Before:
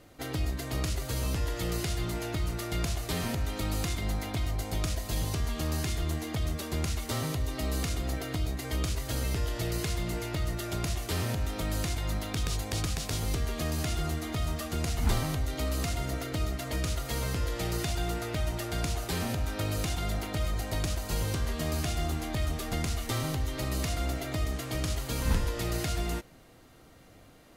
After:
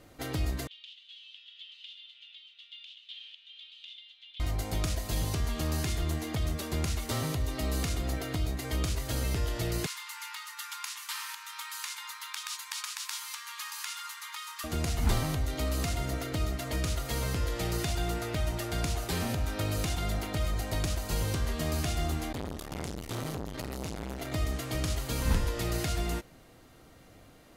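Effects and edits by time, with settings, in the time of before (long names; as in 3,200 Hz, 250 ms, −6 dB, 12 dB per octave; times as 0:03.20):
0:00.67–0:04.40: flat-topped band-pass 3,200 Hz, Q 4
0:09.86–0:14.64: linear-phase brick-wall high-pass 830 Hz
0:22.32–0:24.32: saturating transformer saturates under 790 Hz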